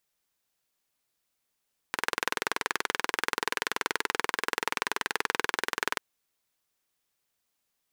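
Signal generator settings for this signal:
pulse-train model of a single-cylinder engine, steady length 4.04 s, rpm 2,500, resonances 450/1,000/1,500 Hz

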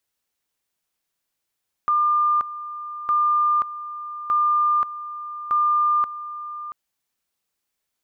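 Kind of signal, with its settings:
tone at two levels in turn 1,200 Hz −16 dBFS, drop 14 dB, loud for 0.53 s, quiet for 0.68 s, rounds 4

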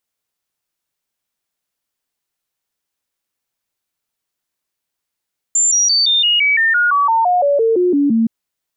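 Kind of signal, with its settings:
stepped sweep 7,240 Hz down, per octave 3, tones 16, 0.17 s, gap 0.00 s −10.5 dBFS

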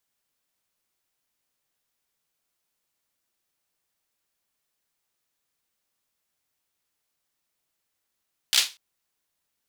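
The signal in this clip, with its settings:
synth clap length 0.24 s, apart 15 ms, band 3,700 Hz, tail 0.26 s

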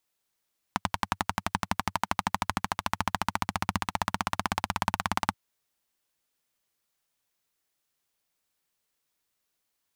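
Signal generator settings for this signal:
pulse-train model of a single-cylinder engine, changing speed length 4.58 s, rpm 1,300, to 2,100, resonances 97/190/890 Hz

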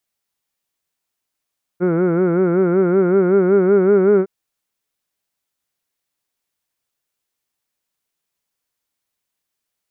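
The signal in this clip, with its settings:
vowel from formants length 2.46 s, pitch 172 Hz, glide +2.5 semitones, vibrato depth 1.05 semitones, F1 410 Hz, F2 1,400 Hz, F3 2,200 Hz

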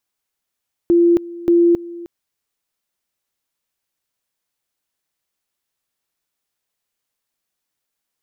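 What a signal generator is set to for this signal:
tone at two levels in turn 343 Hz −9 dBFS, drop 19.5 dB, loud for 0.27 s, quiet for 0.31 s, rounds 2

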